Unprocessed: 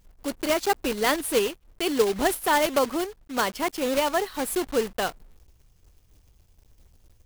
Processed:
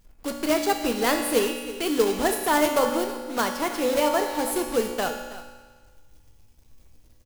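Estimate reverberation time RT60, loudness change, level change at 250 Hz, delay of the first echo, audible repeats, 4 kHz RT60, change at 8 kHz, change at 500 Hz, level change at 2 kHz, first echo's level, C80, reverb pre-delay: 1.5 s, +1.0 dB, +2.5 dB, 0.324 s, 1, 1.4 s, +1.0 dB, +1.0 dB, 0.0 dB, -15.5 dB, 6.0 dB, 4 ms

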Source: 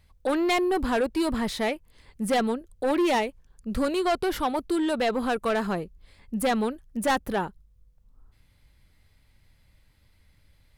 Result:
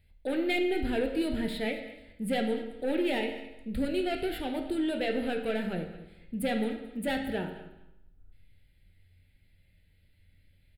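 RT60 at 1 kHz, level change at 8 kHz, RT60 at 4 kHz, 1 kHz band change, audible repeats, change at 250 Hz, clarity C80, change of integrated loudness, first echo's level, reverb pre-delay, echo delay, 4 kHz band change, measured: 0.95 s, -10.5 dB, 0.90 s, -11.5 dB, 2, -3.5 dB, 8.5 dB, -5.0 dB, -16.5 dB, 11 ms, 0.219 s, -4.5 dB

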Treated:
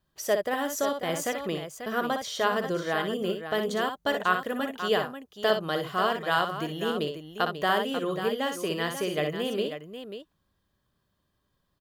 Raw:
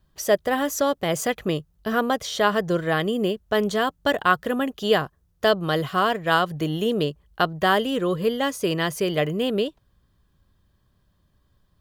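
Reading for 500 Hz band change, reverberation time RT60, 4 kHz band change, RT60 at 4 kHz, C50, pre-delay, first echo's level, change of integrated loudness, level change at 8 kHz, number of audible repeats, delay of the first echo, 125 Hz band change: -5.0 dB, none, -4.5 dB, none, none, none, -7.0 dB, -5.0 dB, -4.5 dB, 2, 60 ms, -9.0 dB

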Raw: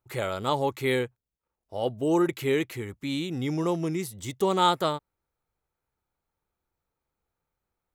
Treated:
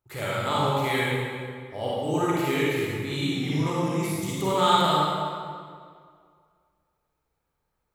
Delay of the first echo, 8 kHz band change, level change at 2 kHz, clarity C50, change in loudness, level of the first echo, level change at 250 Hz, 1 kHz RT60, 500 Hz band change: none, +4.0 dB, +5.0 dB, -5.5 dB, +2.0 dB, none, +1.0 dB, 2.1 s, +0.5 dB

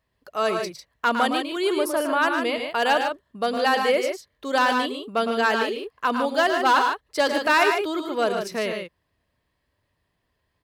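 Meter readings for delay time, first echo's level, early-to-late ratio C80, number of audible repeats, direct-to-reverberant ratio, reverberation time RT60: 0.109 s, -7.5 dB, none, 2, none, none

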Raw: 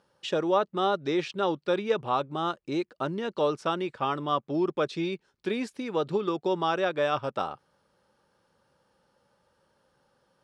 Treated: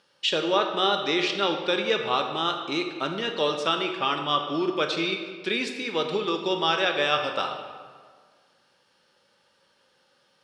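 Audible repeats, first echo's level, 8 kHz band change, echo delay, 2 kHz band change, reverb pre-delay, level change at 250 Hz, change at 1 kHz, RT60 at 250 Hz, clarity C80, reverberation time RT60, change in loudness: none, none, n/a, none, +8.5 dB, 16 ms, +0.5 dB, +2.5 dB, 1.8 s, 7.5 dB, 1.7 s, +3.5 dB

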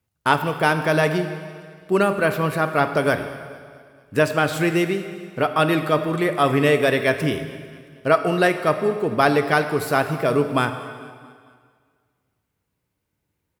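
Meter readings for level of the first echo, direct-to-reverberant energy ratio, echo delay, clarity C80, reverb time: -22.5 dB, 8.0 dB, 0.224 s, 10.0 dB, 1.9 s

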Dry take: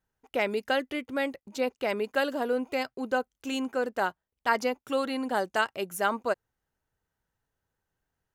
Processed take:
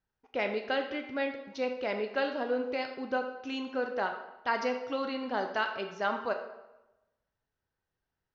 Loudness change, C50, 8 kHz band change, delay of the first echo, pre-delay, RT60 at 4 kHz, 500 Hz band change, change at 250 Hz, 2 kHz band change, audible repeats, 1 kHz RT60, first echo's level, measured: -3.5 dB, 7.5 dB, under -10 dB, none, 11 ms, 0.75 s, -3.0 dB, -4.0 dB, -3.5 dB, none, 1.0 s, none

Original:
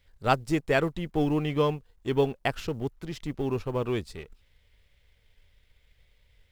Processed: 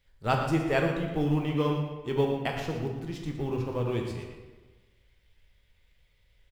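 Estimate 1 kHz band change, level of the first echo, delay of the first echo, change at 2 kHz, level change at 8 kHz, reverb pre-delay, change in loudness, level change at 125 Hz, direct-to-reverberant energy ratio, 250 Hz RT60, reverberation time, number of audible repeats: -2.0 dB, -10.5 dB, 0.116 s, -2.0 dB, -2.5 dB, 5 ms, -1.0 dB, +2.0 dB, 0.5 dB, 1.3 s, 1.3 s, 1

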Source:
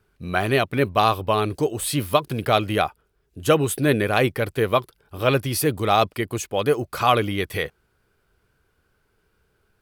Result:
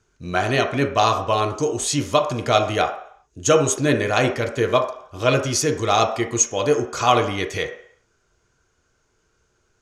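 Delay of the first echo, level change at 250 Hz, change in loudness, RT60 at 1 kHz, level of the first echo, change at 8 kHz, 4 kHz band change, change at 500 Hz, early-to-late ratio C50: none, +0.5 dB, +1.5 dB, 0.65 s, none, +8.5 dB, +2.0 dB, +2.0 dB, 8.0 dB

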